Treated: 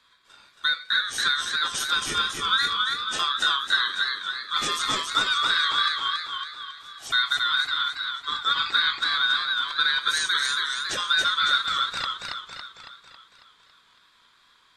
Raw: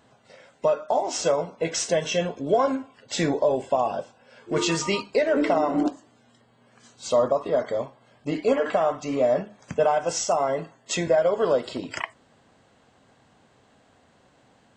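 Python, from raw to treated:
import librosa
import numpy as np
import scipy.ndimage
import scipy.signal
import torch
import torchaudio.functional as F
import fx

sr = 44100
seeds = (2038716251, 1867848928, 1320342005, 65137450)

y = fx.band_swap(x, sr, width_hz=2000)
y = y * np.sin(2.0 * np.pi * 1100.0 * np.arange(len(y)) / sr)
y = fx.echo_warbled(y, sr, ms=276, feedback_pct=54, rate_hz=2.8, cents=94, wet_db=-3)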